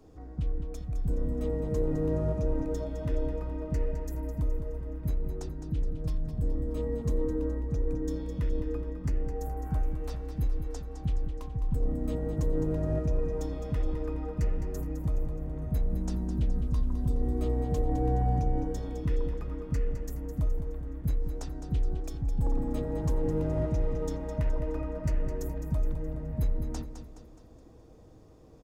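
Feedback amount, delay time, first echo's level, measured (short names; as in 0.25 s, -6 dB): 47%, 0.21 s, -9.5 dB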